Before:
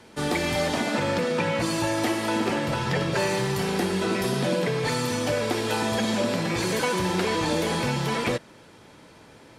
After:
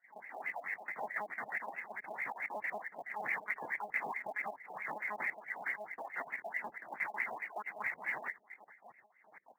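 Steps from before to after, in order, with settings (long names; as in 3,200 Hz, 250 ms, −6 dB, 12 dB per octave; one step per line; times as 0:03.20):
time-frequency cells dropped at random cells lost 81%
in parallel at 0 dB: downward compressor 6 to 1, threshold −38 dBFS, peak gain reduction 15 dB
on the sum: sample-rate reduction 1,300 Hz, jitter 20%
mains-hum notches 50/100/150/200/250/300/350/400 Hz
LFO wah 4.6 Hz 700–2,100 Hz, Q 6.6
brickwall limiter −35.5 dBFS, peak gain reduction 11 dB
one-pitch LPC vocoder at 8 kHz 210 Hz
three-way crossover with the lows and the highs turned down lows −22 dB, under 170 Hz, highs −13 dB, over 2,500 Hz
gate on every frequency bin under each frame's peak −20 dB strong
parametric band 2,100 Hz +14.5 dB 0.48 octaves
floating-point word with a short mantissa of 4 bits
level +4 dB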